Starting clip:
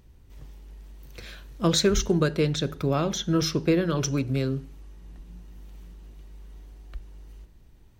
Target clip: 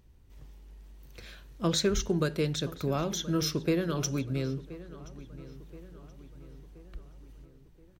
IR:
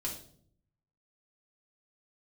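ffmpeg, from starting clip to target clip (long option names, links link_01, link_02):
-filter_complex "[0:a]asettb=1/sr,asplit=3[link_01][link_02][link_03];[link_01]atrim=end=2.184[link_04];[link_02]atrim=start=2.18:end=4.21,asetpts=PTS-STARTPTS,afade=type=in:duration=0.004:curve=qsin,afade=type=out:start_time=2.026:duration=0.004:curve=qsin,highshelf=frequency=9000:gain=11[link_05];[link_03]atrim=start=4.206[link_06];[link_04][link_05]acrossfade=duration=0.004:curve1=hsin:curve2=qsin[link_07];[link_07][link_06]acrossfade=duration=0.004:curve1=qsin:curve2=hsin,asplit=2[link_08][link_09];[link_09]adelay=1026,lowpass=frequency=2800:poles=1,volume=-17dB,asplit=2[link_10][link_11];[link_11]adelay=1026,lowpass=frequency=2800:poles=1,volume=0.52,asplit=2[link_12][link_13];[link_13]adelay=1026,lowpass=frequency=2800:poles=1,volume=0.52,asplit=2[link_14][link_15];[link_15]adelay=1026,lowpass=frequency=2800:poles=1,volume=0.52,asplit=2[link_16][link_17];[link_17]adelay=1026,lowpass=frequency=2800:poles=1,volume=0.52[link_18];[link_08][link_10][link_12][link_14][link_16][link_18]amix=inputs=6:normalize=0,volume=-5.5dB"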